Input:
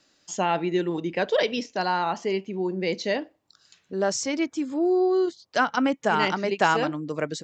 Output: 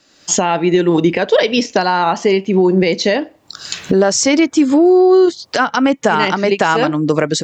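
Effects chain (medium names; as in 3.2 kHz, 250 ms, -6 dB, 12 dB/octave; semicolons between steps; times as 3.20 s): recorder AGC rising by 38 dB/s; loudness maximiser +9 dB; trim -1 dB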